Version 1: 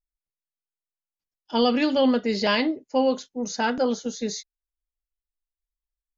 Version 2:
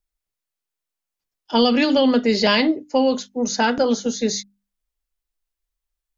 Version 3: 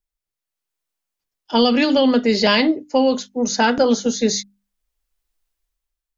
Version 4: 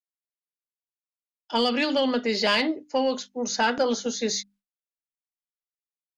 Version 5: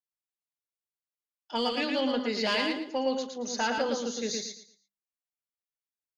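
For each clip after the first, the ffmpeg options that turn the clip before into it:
-filter_complex "[0:a]acrossover=split=250|3000[a][b][c];[b]acompressor=threshold=-23dB:ratio=6[d];[a][d][c]amix=inputs=3:normalize=0,bandreject=f=50:t=h:w=6,bandreject=f=100:t=h:w=6,bandreject=f=150:t=h:w=6,bandreject=f=200:t=h:w=6,bandreject=f=250:t=h:w=6,bandreject=f=300:t=h:w=6,volume=7.5dB"
-af "dynaudnorm=f=200:g=7:m=11dB,volume=-3dB"
-filter_complex "[0:a]asplit=2[a][b];[b]highpass=f=720:p=1,volume=8dB,asoftclip=type=tanh:threshold=-3.5dB[c];[a][c]amix=inputs=2:normalize=0,lowpass=f=6.1k:p=1,volume=-6dB,agate=range=-33dB:threshold=-42dB:ratio=3:detection=peak,volume=-7.5dB"
-af "aecho=1:1:114|228|342|456:0.631|0.17|0.046|0.0124,volume=-6.5dB"

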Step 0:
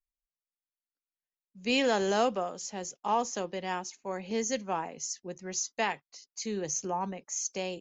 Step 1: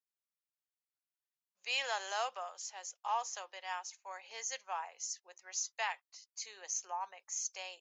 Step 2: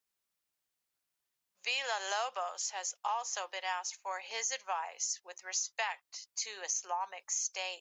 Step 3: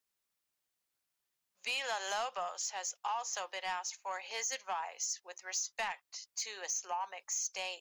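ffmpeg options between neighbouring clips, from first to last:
-af "highpass=f=770:w=0.5412,highpass=f=770:w=1.3066,volume=-4.5dB"
-af "acompressor=threshold=-40dB:ratio=6,volume=8.5dB"
-af "asoftclip=type=tanh:threshold=-28dB"

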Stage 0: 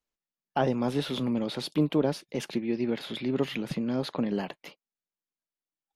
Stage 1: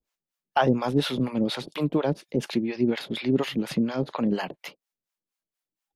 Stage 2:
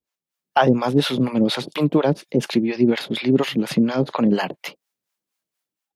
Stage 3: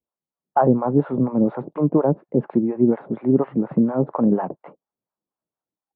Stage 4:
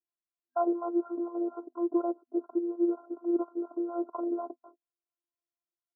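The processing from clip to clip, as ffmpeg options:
-filter_complex "[0:a]acrossover=split=570[a][b];[a]aeval=exprs='val(0)*(1-1/2+1/2*cos(2*PI*4.2*n/s))':c=same[c];[b]aeval=exprs='val(0)*(1-1/2-1/2*cos(2*PI*4.2*n/s))':c=same[d];[c][d]amix=inputs=2:normalize=0,volume=8.5dB"
-af "highpass=85,dynaudnorm=f=100:g=7:m=9dB,volume=-1.5dB"
-af "lowpass=f=1.1k:w=0.5412,lowpass=f=1.1k:w=1.3066"
-af "afftfilt=real='hypot(re,im)*cos(PI*b)':imag='0':win_size=512:overlap=0.75,afftfilt=real='re*between(b*sr/4096,250,1600)':imag='im*between(b*sr/4096,250,1600)':win_size=4096:overlap=0.75,volume=-7.5dB"

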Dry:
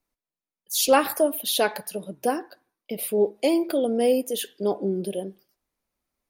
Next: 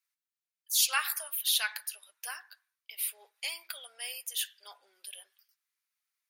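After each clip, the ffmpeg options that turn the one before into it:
-af "highpass=f=1.4k:w=0.5412,highpass=f=1.4k:w=1.3066,volume=-1.5dB"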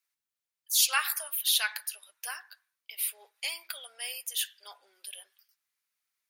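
-af "bandreject=f=60:t=h:w=6,bandreject=f=120:t=h:w=6,bandreject=f=180:t=h:w=6,bandreject=f=240:t=h:w=6,volume=2dB"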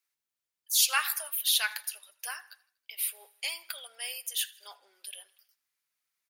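-af "aecho=1:1:80|160|240|320:0.0668|0.0361|0.0195|0.0105"

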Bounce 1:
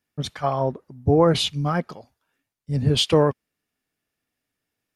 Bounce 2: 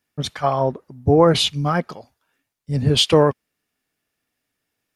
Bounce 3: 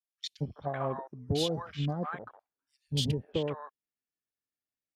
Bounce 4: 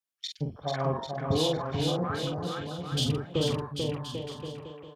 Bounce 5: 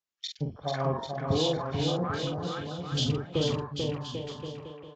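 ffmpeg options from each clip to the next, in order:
-af "lowshelf=f=360:g=-3,volume=4.5dB"
-filter_complex "[0:a]acompressor=threshold=-22dB:ratio=5,acrossover=split=830|2600[a][b][c];[a]adelay=230[d];[b]adelay=380[e];[d][e][c]amix=inputs=3:normalize=0,afwtdn=0.01,volume=-5.5dB"
-filter_complex "[0:a]asplit=2[a][b];[b]adelay=45,volume=-5dB[c];[a][c]amix=inputs=2:normalize=0,asplit=2[d][e];[e]aecho=0:1:440|792|1074|1299|1479:0.631|0.398|0.251|0.158|0.1[f];[d][f]amix=inputs=2:normalize=0,volume=1.5dB"
-af "aresample=16000,aresample=44100" -ar 24000 -c:a aac -b:a 48k

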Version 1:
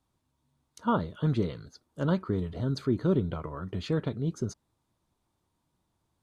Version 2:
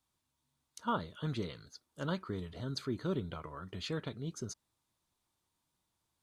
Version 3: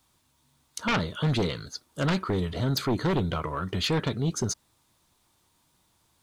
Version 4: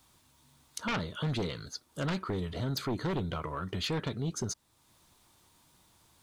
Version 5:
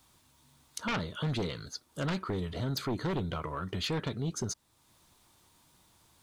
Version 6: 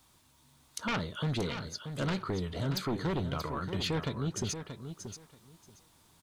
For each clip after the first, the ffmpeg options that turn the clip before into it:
-af "tiltshelf=f=1.2k:g=-6,volume=-4.5dB"
-af "aeval=exprs='0.0944*sin(PI/2*3.55*val(0)/0.0944)':c=same"
-af "acompressor=threshold=-53dB:ratio=1.5,volume=3.5dB"
-af anull
-af "aecho=1:1:631|1262|1893:0.355|0.0603|0.0103"

